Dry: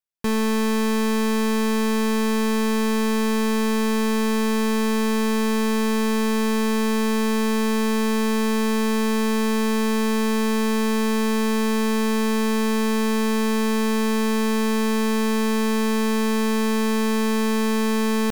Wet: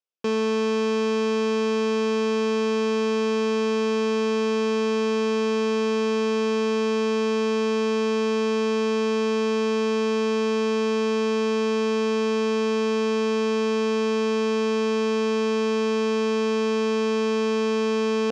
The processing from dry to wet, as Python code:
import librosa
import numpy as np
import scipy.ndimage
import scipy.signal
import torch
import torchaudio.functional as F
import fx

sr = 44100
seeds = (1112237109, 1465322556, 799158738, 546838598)

y = fx.cabinet(x, sr, low_hz=270.0, low_slope=12, high_hz=5800.0, hz=(490.0, 910.0, 1900.0, 2700.0, 4000.0), db=(7, -5, -10, 3, -6))